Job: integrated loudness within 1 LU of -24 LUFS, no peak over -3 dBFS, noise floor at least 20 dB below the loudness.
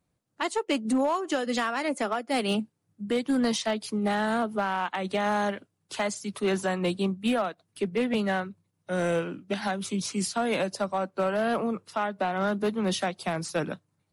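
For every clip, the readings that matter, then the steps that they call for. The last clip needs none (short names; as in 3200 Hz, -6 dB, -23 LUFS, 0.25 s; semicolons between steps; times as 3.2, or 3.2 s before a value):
clipped 1.1%; flat tops at -19.5 dBFS; loudness -28.5 LUFS; peak -19.5 dBFS; loudness target -24.0 LUFS
-> clip repair -19.5 dBFS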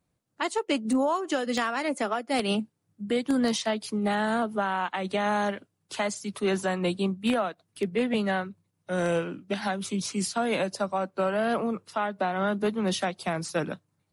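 clipped 0.0%; loudness -28.5 LUFS; peak -10.5 dBFS; loudness target -24.0 LUFS
-> gain +4.5 dB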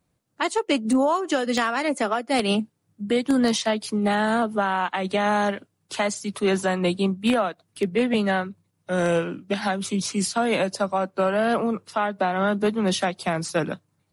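loudness -24.0 LUFS; peak -6.0 dBFS; noise floor -72 dBFS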